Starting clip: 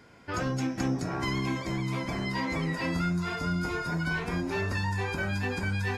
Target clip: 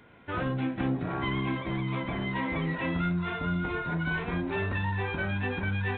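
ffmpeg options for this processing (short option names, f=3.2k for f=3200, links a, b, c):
-filter_complex "[0:a]asettb=1/sr,asplit=3[a][b][c];[a]atrim=end=0.974[d];[b]atrim=start=0.97:end=2.1,asetpts=PTS-STARTPTS,afade=t=in:d=0.004:c=qsin,afade=t=out:st=1.126:d=0.004:c=qsin,adynamicequalizer=threshold=0.00158:dfrequency=1200:dqfactor=6.5:tfrequency=1200:tqfactor=6.5:attack=5:release=100:ratio=0.375:range=1.5:mode=boostabove:tftype=bell[e];[c]atrim=start=2.096[f];[d][e]acrossfade=d=0.004:c1=hsin:c2=qsin[g];[g][f]acrossfade=d=0.004:c1=qsin:c2=hsin" -ar 8000 -c:a adpcm_g726 -b:a 32k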